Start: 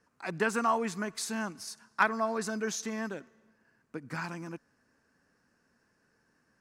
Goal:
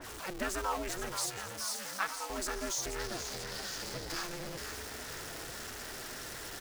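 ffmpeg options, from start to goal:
ffmpeg -i in.wav -filter_complex "[0:a]aeval=exprs='val(0)+0.5*0.0266*sgn(val(0))':channel_layout=same,asettb=1/sr,asplit=3[link_01][link_02][link_03];[link_01]atrim=end=1.194[link_04];[link_02]atrim=start=1.19:end=2.3,asetpts=PTS-STARTPTS,afade=type=in:duration=0.004:curve=qsin,afade=type=out:start_time=1.106:duration=0.004:curve=qsin,highpass=1000[link_05];[link_03]atrim=start=2.296[link_06];[link_04][link_05]acrossfade=duration=0.004:curve1=hsin:curve2=qsin[link_07];[link_07][link_06]acrossfade=duration=0.004:curve1=qsin:curve2=hsin,asettb=1/sr,asplit=3[link_08][link_09][link_10];[link_08]atrim=end=2.994[link_11];[link_09]atrim=start=2.99:end=4.22,asetpts=PTS-STARTPTS,afade=type=in:duration=0.004:curve=qsin,afade=type=out:start_time=1.226:duration=0.004:curve=qsin,equalizer=frequency=4800:width_type=o:width=0.74:gain=10.5[link_12];[link_10]atrim=start=4.216[link_13];[link_11][link_12]acrossfade=duration=0.004:curve1=hsin:curve2=qsin[link_14];[link_14][link_13]acrossfade=duration=0.004:curve1=qsin:curve2=hsin,asplit=9[link_15][link_16][link_17][link_18][link_19][link_20][link_21][link_22][link_23];[link_16]adelay=480,afreqshift=82,volume=-9dB[link_24];[link_17]adelay=960,afreqshift=164,volume=-12.9dB[link_25];[link_18]adelay=1440,afreqshift=246,volume=-16.8dB[link_26];[link_19]adelay=1920,afreqshift=328,volume=-20.6dB[link_27];[link_20]adelay=2400,afreqshift=410,volume=-24.5dB[link_28];[link_21]adelay=2880,afreqshift=492,volume=-28.4dB[link_29];[link_22]adelay=3360,afreqshift=574,volume=-32.3dB[link_30];[link_23]adelay=3840,afreqshift=656,volume=-36.1dB[link_31];[link_15][link_24][link_25][link_26][link_27][link_28][link_29][link_30][link_31]amix=inputs=9:normalize=0,aeval=exprs='val(0)*sin(2*PI*180*n/s)':channel_layout=same,adynamicequalizer=threshold=0.00355:dfrequency=3000:dqfactor=0.7:tfrequency=3000:tqfactor=0.7:attack=5:release=100:ratio=0.375:range=3:mode=boostabove:tftype=highshelf,volume=-6dB" out.wav

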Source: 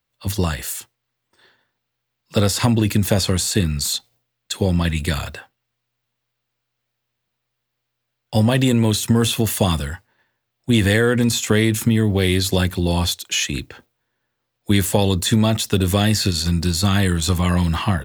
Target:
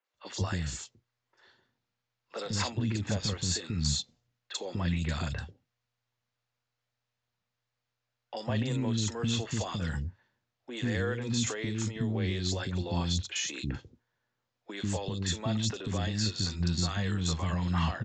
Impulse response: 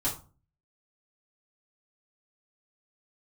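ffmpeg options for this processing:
-filter_complex "[0:a]aresample=16000,aresample=44100,alimiter=limit=-15dB:level=0:latency=1:release=163,acrossover=split=340|2900[link_01][link_02][link_03];[link_03]adelay=40[link_04];[link_01]adelay=140[link_05];[link_05][link_02][link_04]amix=inputs=3:normalize=0,volume=-5.5dB"

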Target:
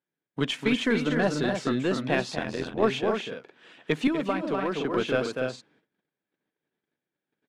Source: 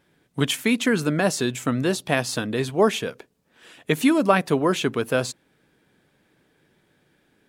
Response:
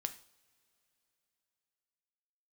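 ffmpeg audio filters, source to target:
-filter_complex "[0:a]aecho=1:1:244.9|291.5:0.501|0.447,asettb=1/sr,asplit=3[link_01][link_02][link_03];[link_01]atrim=end=4.074[link_04];[link_02]atrim=start=4.07:end=4.94,asetpts=PTS-STARTPTS,afade=type=in:duration=0.004:curve=qsin,afade=type=out:start_time=0.866:duration=0.004:curve=qsin,acrossover=split=210|1300[link_05][link_06][link_07];[link_05]acompressor=threshold=-34dB:ratio=4[link_08];[link_06]acompressor=threshold=-23dB:ratio=4[link_09];[link_07]acompressor=threshold=-33dB:ratio=4[link_10];[link_08][link_09][link_10]amix=inputs=3:normalize=0[link_11];[link_03]atrim=start=4.936[link_12];[link_04][link_11]acrossfade=duration=0.004:curve1=hsin:curve2=qsin[link_13];[link_13][link_12]acrossfade=duration=0.004:curve1=qsin:curve2=hsin,highpass=160,lowpass=4100,agate=range=-23dB:threshold=-59dB:ratio=16:detection=peak,asplit=2[link_14][link_15];[link_15]aeval=exprs='clip(val(0),-1,0.0473)':channel_layout=same,volume=-7.5dB[link_16];[link_14][link_16]amix=inputs=2:normalize=0,asettb=1/sr,asplit=3[link_17][link_18][link_19];[link_17]atrim=end=0.844[link_20];[link_18]atrim=start=0.84:end=1.8,asetpts=PTS-STARTPTS,afade=type=in:duration=0.004:curve=qsin,afade=type=out:start_time=0.956:duration=0.004:curve=qsin,bandreject=frequency=2500:width=11[link_21];[link_19]atrim=start=1.796[link_22];[link_20][link_21]acrossfade=duration=0.004:curve1=hsin:curve2=qsin[link_23];[link_23][link_22]acrossfade=duration=0.004:curve1=qsin:curve2=hsin,asplit=3[link_24][link_25][link_26];[link_24]afade=type=out:start_time=2.34:duration=0.02[link_27];[link_25]tremolo=f=84:d=0.824,afade=type=in:start_time=2.34:duration=0.02,afade=type=out:start_time=2.82:duration=0.02[link_28];[link_26]afade=type=in:start_time=2.82:duration=0.02[link_29];[link_27][link_28][link_29]amix=inputs=3:normalize=0,volume=-6dB"

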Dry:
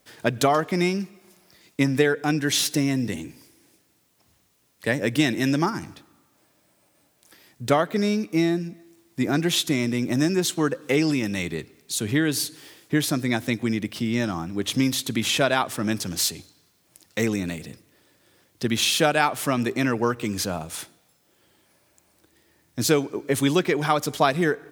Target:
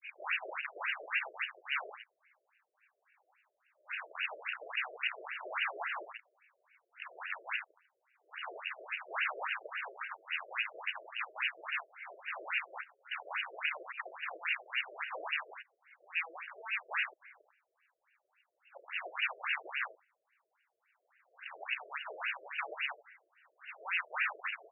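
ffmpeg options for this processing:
ffmpeg -i in.wav -filter_complex "[0:a]areverse,acontrast=21,equalizer=frequency=140:width_type=o:width=2.5:gain=14.5,asplit=2[link_01][link_02];[link_02]volume=12.5dB,asoftclip=hard,volume=-12.5dB,volume=-8.5dB[link_03];[link_01][link_03]amix=inputs=2:normalize=0,acompressor=threshold=-16dB:ratio=2.5,agate=range=-7dB:threshold=-38dB:ratio=16:detection=peak,aecho=1:1:33|79:0.335|0.398,aeval=exprs='0.0841*(abs(mod(val(0)/0.0841+3,4)-2)-1)':channel_layout=same,lowpass=frequency=3400:width_type=q:width=0.5098,lowpass=frequency=3400:width_type=q:width=0.6013,lowpass=frequency=3400:width_type=q:width=0.9,lowpass=frequency=3400:width_type=q:width=2.563,afreqshift=-4000,afftfilt=real='re*between(b*sr/1024,460*pow(2100/460,0.5+0.5*sin(2*PI*3.6*pts/sr))/1.41,460*pow(2100/460,0.5+0.5*sin(2*PI*3.6*pts/sr))*1.41)':imag='im*between(b*sr/1024,460*pow(2100/460,0.5+0.5*sin(2*PI*3.6*pts/sr))/1.41,460*pow(2100/460,0.5+0.5*sin(2*PI*3.6*pts/sr))*1.41)':win_size=1024:overlap=0.75" out.wav

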